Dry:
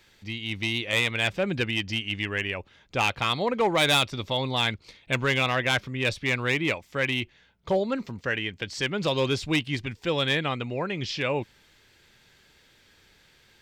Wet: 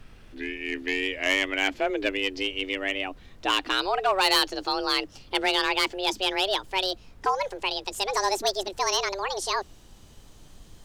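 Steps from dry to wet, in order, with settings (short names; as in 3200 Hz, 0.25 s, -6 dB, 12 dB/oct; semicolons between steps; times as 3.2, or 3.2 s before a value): speed glide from 67% -> 184%; frequency shift +190 Hz; added noise brown -48 dBFS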